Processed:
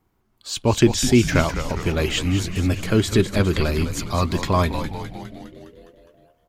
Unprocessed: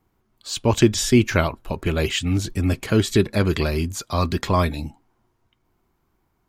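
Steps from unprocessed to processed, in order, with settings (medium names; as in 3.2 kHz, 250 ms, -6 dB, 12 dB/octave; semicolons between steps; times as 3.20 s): frequency-shifting echo 205 ms, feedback 63%, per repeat -97 Hz, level -9.5 dB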